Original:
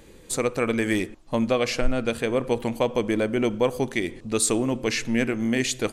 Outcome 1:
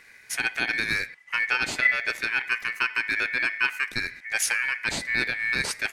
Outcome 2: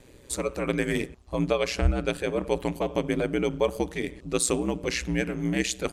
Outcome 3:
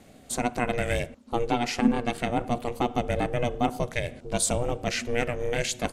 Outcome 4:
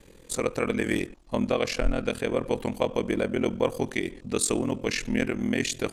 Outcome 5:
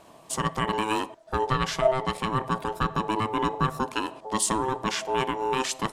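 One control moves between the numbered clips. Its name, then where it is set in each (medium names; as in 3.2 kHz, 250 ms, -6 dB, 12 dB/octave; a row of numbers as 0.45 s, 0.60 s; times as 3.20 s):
ring modulator, frequency: 2 kHz, 61 Hz, 240 Hz, 21 Hz, 650 Hz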